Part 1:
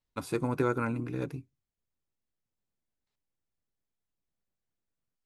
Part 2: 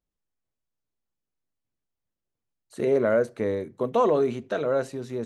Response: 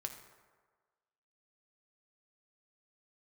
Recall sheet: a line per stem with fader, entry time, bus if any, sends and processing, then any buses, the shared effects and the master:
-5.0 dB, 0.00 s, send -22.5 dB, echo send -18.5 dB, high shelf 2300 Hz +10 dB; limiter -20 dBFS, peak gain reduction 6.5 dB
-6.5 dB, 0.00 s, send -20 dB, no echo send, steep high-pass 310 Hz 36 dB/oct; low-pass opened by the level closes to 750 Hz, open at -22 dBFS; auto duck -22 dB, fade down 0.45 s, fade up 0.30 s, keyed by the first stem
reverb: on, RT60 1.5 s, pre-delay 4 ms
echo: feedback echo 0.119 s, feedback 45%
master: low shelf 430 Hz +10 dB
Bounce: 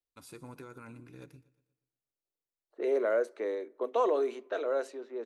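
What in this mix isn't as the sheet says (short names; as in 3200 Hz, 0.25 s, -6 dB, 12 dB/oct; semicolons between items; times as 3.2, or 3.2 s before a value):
stem 1 -5.0 dB -> -16.5 dB; master: missing low shelf 430 Hz +10 dB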